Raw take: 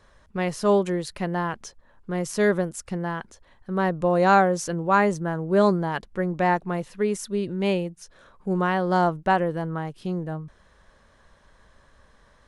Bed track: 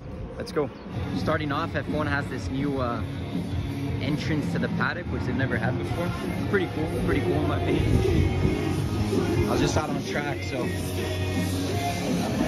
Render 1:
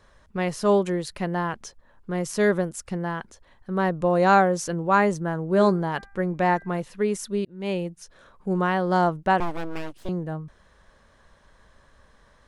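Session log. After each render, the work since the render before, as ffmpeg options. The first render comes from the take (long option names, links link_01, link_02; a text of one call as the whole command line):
ffmpeg -i in.wav -filter_complex "[0:a]asettb=1/sr,asplit=3[link_01][link_02][link_03];[link_01]atrim=end=5.464[link_04];[link_02]atrim=start=5.46:end=6.8,asetpts=PTS-STARTPTS,afade=type=in:duration=0.004:curve=qsin,afade=type=out:start_time=1.336:duration=0.004:curve=qsin,bandreject=frequency=396.6:width_type=h:width=4,bandreject=frequency=793.2:width_type=h:width=4,bandreject=frequency=1189.8:width_type=h:width=4,bandreject=frequency=1586.4:width_type=h:width=4,bandreject=frequency=1983:width_type=h:width=4,bandreject=frequency=2379.6:width_type=h:width=4[link_05];[link_03]atrim=start=6.796[link_06];[link_04][link_05]acrossfade=duration=0.004:curve1=hsin:curve2=qsin[link_07];[link_07][link_06]acrossfade=duration=0.004:curve1=qsin:curve2=hsin,asettb=1/sr,asplit=3[link_08][link_09][link_10];[link_08]atrim=end=9.404[link_11];[link_09]atrim=start=9.4:end=10.09,asetpts=PTS-STARTPTS,afade=type=in:duration=0.004:curve=qsin,afade=type=out:start_time=0.686:duration=0.004:curve=qsin,aeval=exprs='abs(val(0))':channel_layout=same[link_12];[link_10]atrim=start=10.086[link_13];[link_11][link_12]acrossfade=duration=0.004:curve1=hsin:curve2=qsin[link_14];[link_14][link_13]acrossfade=duration=0.004:curve1=qsin:curve2=hsin,asplit=2[link_15][link_16];[link_15]atrim=end=7.45,asetpts=PTS-STARTPTS,afade=type=out:start_time=7.446:duration=0.004:curve=hsin[link_17];[link_16]atrim=start=7.45,asetpts=PTS-STARTPTS,afade=type=in:duration=0.41[link_18];[link_17][link_18]concat=n=2:v=0:a=1" out.wav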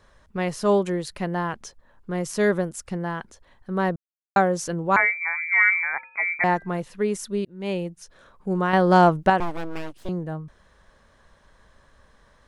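ffmpeg -i in.wav -filter_complex "[0:a]asettb=1/sr,asplit=3[link_01][link_02][link_03];[link_01]atrim=end=4.964[link_04];[link_02]atrim=start=4.96:end=6.44,asetpts=PTS-STARTPTS,afade=type=in:duration=0.004:curve=qsin,afade=type=out:start_time=1.476:duration=0.004:curve=qsin,lowpass=frequency=2100:width_type=q:width=0.5098,lowpass=frequency=2100:width_type=q:width=0.6013,lowpass=frequency=2100:width_type=q:width=0.9,lowpass=frequency=2100:width_type=q:width=2.563,afreqshift=-2500[link_05];[link_03]atrim=start=6.436[link_06];[link_04][link_05]acrossfade=duration=0.004:curve1=hsin:curve2=qsin[link_07];[link_07][link_06]acrossfade=duration=0.004:curve1=qsin:curve2=hsin,asettb=1/sr,asplit=3[link_08][link_09][link_10];[link_08]atrim=end=8.734[link_11];[link_09]atrim=start=8.73:end=9.3,asetpts=PTS-STARTPTS,afade=type=in:duration=0.004:curve=qsin,afade=type=out:start_time=0.566:duration=0.004:curve=qsin,acontrast=58[link_12];[link_10]atrim=start=9.296[link_13];[link_11][link_12]acrossfade=duration=0.004:curve1=hsin:curve2=qsin[link_14];[link_14][link_13]acrossfade=duration=0.004:curve1=qsin:curve2=hsin,asplit=3[link_15][link_16][link_17];[link_15]atrim=end=3.96,asetpts=PTS-STARTPTS,afade=type=out:start_time=3.956:duration=0.004:curve=hsin[link_18];[link_16]atrim=start=3.96:end=4.36,asetpts=PTS-STARTPTS,volume=0[link_19];[link_17]atrim=start=4.36,asetpts=PTS-STARTPTS,afade=type=in:duration=0.004:curve=hsin[link_20];[link_18][link_19][link_20]concat=n=3:v=0:a=1" out.wav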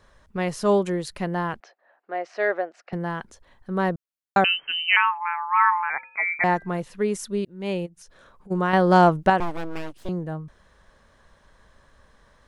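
ffmpeg -i in.wav -filter_complex "[0:a]asettb=1/sr,asplit=3[link_01][link_02][link_03];[link_01]atrim=end=1.604[link_04];[link_02]atrim=start=1.6:end=2.93,asetpts=PTS-STARTPTS,afade=type=in:duration=0.004:curve=qsin,afade=type=out:start_time=1.326:duration=0.004:curve=qsin,highpass=frequency=400:width=0.5412,highpass=frequency=400:width=1.3066,equalizer=frequency=450:width_type=q:width=4:gain=-6,equalizer=frequency=710:width_type=q:width=4:gain=10,equalizer=frequency=1000:width_type=q:width=4:gain=-6,equalizer=frequency=1800:width_type=q:width=4:gain=3,equalizer=frequency=3400:width_type=q:width=4:gain=-9,lowpass=frequency=3700:width=0.5412,lowpass=frequency=3700:width=1.3066[link_05];[link_03]atrim=start=2.926[link_06];[link_04][link_05]acrossfade=duration=0.004:curve1=hsin:curve2=qsin[link_07];[link_07][link_06]acrossfade=duration=0.004:curve1=qsin:curve2=hsin,asettb=1/sr,asplit=3[link_08][link_09][link_10];[link_08]atrim=end=4.444[link_11];[link_09]atrim=start=4.44:end=5.9,asetpts=PTS-STARTPTS,afade=type=in:duration=0.004:curve=qsin,afade=type=out:start_time=1.456:duration=0.004:curve=qsin,lowpass=frequency=2700:width_type=q:width=0.5098,lowpass=frequency=2700:width_type=q:width=0.6013,lowpass=frequency=2700:width_type=q:width=0.9,lowpass=frequency=2700:width_type=q:width=2.563,afreqshift=-3200[link_12];[link_10]atrim=start=5.896[link_13];[link_11][link_12]acrossfade=duration=0.004:curve1=hsin:curve2=qsin[link_14];[link_14][link_13]acrossfade=duration=0.004:curve1=qsin:curve2=hsin,asplit=3[link_15][link_16][link_17];[link_15]afade=type=out:start_time=7.85:duration=0.02[link_18];[link_16]acompressor=threshold=-43dB:ratio=12:attack=3.2:release=140:knee=1:detection=peak,afade=type=in:start_time=7.85:duration=0.02,afade=type=out:start_time=8.5:duration=0.02[link_19];[link_17]afade=type=in:start_time=8.5:duration=0.02[link_20];[link_18][link_19][link_20]amix=inputs=3:normalize=0" out.wav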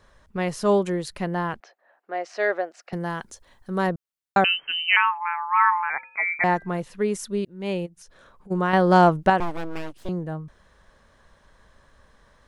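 ffmpeg -i in.wav -filter_complex "[0:a]asettb=1/sr,asplit=3[link_01][link_02][link_03];[link_01]atrim=end=2.134[link_04];[link_02]atrim=start=2.13:end=3.87,asetpts=PTS-STARTPTS,afade=type=in:duration=0.004:curve=qsin,afade=type=out:start_time=1.736:duration=0.004:curve=qsin,bass=frequency=250:gain=-1,treble=frequency=4000:gain=9[link_05];[link_03]atrim=start=3.866[link_06];[link_04][link_05]acrossfade=duration=0.004:curve1=hsin:curve2=qsin[link_07];[link_07][link_06]acrossfade=duration=0.004:curve1=qsin:curve2=hsin" out.wav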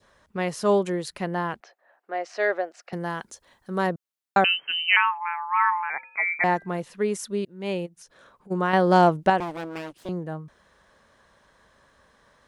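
ffmpeg -i in.wav -af "highpass=frequency=170:poles=1,adynamicequalizer=threshold=0.0224:dfrequency=1300:dqfactor=1.4:tfrequency=1300:tqfactor=1.4:attack=5:release=100:ratio=0.375:range=3:mode=cutabove:tftype=bell" out.wav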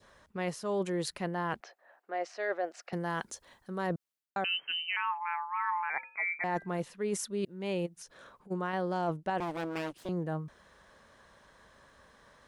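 ffmpeg -i in.wav -af "alimiter=limit=-10.5dB:level=0:latency=1:release=484,areverse,acompressor=threshold=-30dB:ratio=6,areverse" out.wav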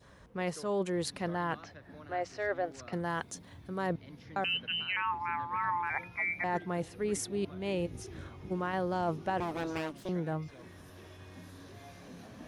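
ffmpeg -i in.wav -i bed.wav -filter_complex "[1:a]volume=-24dB[link_01];[0:a][link_01]amix=inputs=2:normalize=0" out.wav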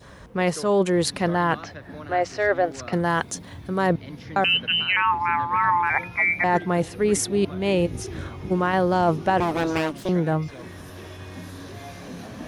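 ffmpeg -i in.wav -af "volume=12dB" out.wav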